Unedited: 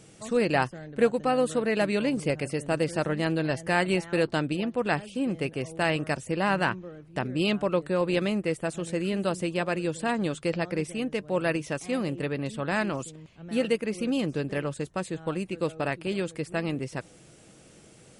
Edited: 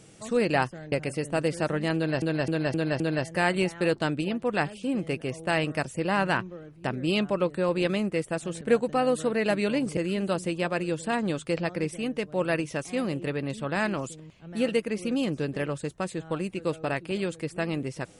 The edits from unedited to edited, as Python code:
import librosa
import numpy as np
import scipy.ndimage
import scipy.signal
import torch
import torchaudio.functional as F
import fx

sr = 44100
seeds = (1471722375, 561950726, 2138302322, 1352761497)

y = fx.edit(x, sr, fx.move(start_s=0.92, length_s=1.36, to_s=8.93),
    fx.repeat(start_s=3.32, length_s=0.26, count=5), tone=tone)